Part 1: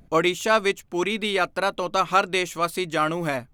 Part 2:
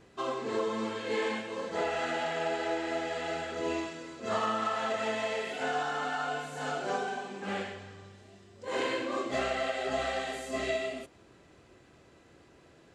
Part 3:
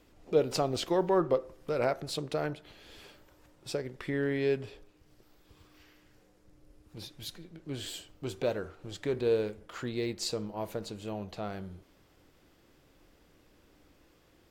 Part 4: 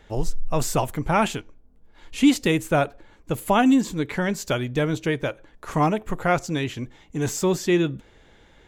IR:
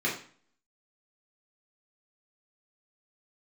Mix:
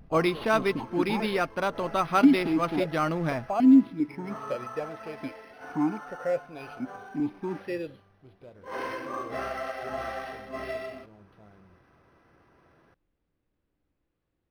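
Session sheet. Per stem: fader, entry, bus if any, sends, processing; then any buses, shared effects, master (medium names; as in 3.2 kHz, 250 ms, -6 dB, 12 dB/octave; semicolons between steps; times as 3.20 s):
-4.0 dB, 0.00 s, no send, none
8.33 s -17.5 dB -> 8.76 s -8 dB, 0.00 s, no send, peaking EQ 1.2 kHz +11 dB 1.8 oct
-19.5 dB, 0.00 s, no send, none
-3.0 dB, 0.00 s, no send, waveshaping leveller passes 1; stepped vowel filter 2.5 Hz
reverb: none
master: tone controls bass +6 dB, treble -2 dB; decimation joined by straight lines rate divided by 6×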